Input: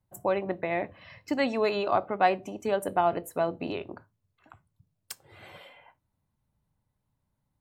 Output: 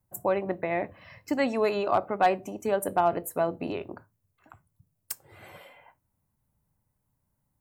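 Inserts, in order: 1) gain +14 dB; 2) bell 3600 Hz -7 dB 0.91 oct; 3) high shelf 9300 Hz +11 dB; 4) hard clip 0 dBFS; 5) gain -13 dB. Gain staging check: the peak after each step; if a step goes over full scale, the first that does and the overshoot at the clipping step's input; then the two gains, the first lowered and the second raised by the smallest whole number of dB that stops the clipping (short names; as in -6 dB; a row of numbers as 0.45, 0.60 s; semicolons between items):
+5.0, +4.5, +4.5, 0.0, -13.0 dBFS; step 1, 4.5 dB; step 1 +9 dB, step 5 -8 dB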